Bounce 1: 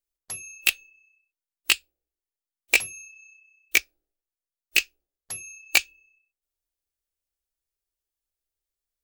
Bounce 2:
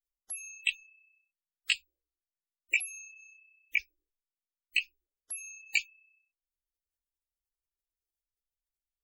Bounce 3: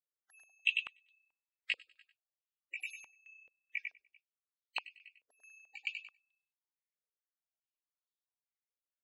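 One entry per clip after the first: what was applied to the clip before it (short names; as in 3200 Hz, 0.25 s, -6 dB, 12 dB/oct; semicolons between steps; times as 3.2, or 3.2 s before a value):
soft clip -13.5 dBFS, distortion -14 dB; spectral gate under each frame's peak -15 dB strong; gain -3.5 dB
on a send: feedback echo 98 ms, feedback 33%, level -4 dB; on the sum: stepped band-pass 4.6 Hz 510–3700 Hz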